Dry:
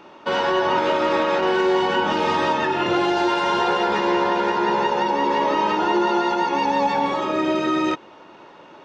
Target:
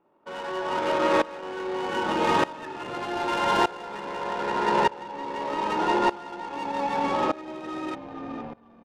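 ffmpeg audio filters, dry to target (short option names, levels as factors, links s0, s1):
-filter_complex "[0:a]highshelf=f=4400:g=8.5,bandreject=f=50:t=h:w=6,bandreject=f=100:t=h:w=6,bandreject=f=150:t=h:w=6,bandreject=f=200:t=h:w=6,bandreject=f=250:t=h:w=6,bandreject=f=300:t=h:w=6,bandreject=f=350:t=h:w=6,asplit=2[s0][s1];[s1]asplit=6[s2][s3][s4][s5][s6][s7];[s2]adelay=468,afreqshift=-42,volume=0.266[s8];[s3]adelay=936,afreqshift=-84,volume=0.146[s9];[s4]adelay=1404,afreqshift=-126,volume=0.0804[s10];[s5]adelay=1872,afreqshift=-168,volume=0.0442[s11];[s6]adelay=2340,afreqshift=-210,volume=0.0243[s12];[s7]adelay=2808,afreqshift=-252,volume=0.0133[s13];[s8][s9][s10][s11][s12][s13]amix=inputs=6:normalize=0[s14];[s0][s14]amix=inputs=2:normalize=0,adynamicsmooth=sensitivity=1.5:basefreq=1000,aeval=exprs='val(0)*pow(10,-20*if(lt(mod(-0.82*n/s,1),2*abs(-0.82)/1000),1-mod(-0.82*n/s,1)/(2*abs(-0.82)/1000),(mod(-0.82*n/s,1)-2*abs(-0.82)/1000)/(1-2*abs(-0.82)/1000))/20)':c=same"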